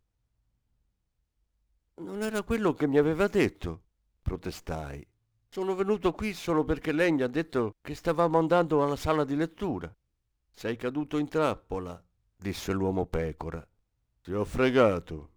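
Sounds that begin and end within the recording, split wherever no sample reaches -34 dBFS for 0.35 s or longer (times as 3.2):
2.01–3.74
4.26–4.98
5.57–9.86
10.61–11.95
12.45–13.59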